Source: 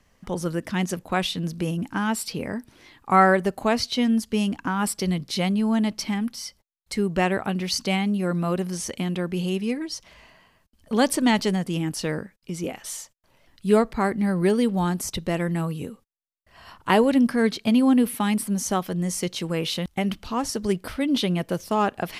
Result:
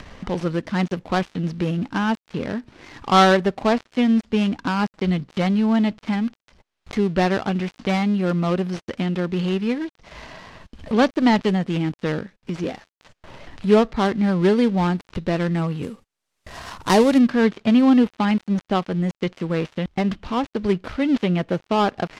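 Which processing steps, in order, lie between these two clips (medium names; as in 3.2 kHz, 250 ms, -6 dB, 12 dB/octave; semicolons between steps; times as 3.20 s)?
dead-time distortion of 0.15 ms; low-pass 4.5 kHz 12 dB/octave, from 15.83 s 9.2 kHz, from 17.18 s 3.9 kHz; upward compressor, threshold -28 dBFS; trim +3.5 dB; AAC 128 kbps 44.1 kHz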